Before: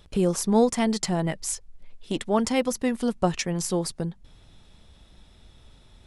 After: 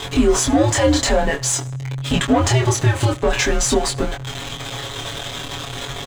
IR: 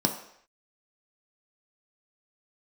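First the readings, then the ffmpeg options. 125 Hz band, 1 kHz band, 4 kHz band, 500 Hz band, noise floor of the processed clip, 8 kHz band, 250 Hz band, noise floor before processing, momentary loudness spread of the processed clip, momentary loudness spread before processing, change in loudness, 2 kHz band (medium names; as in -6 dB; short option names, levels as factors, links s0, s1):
+12.0 dB, +7.5 dB, +12.5 dB, +6.5 dB, -31 dBFS, +11.0 dB, +5.0 dB, -55 dBFS, 12 LU, 11 LU, +6.5 dB, +13.5 dB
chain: -filter_complex "[0:a]aeval=exprs='val(0)+0.5*0.0224*sgn(val(0))':c=same,aecho=1:1:7.2:0.84,asplit=2[s0][s1];[s1]highpass=f=720:p=1,volume=7.08,asoftclip=type=tanh:threshold=0.473[s2];[s0][s2]amix=inputs=2:normalize=0,lowpass=f=1600:p=1,volume=0.501,aecho=1:1:77|154|231:0.0708|0.0297|0.0125,afreqshift=-140,superequalizer=13b=1.41:15b=2,alimiter=limit=0.224:level=0:latency=1:release=58,flanger=delay=22.5:depth=3.8:speed=0.48,volume=2.66"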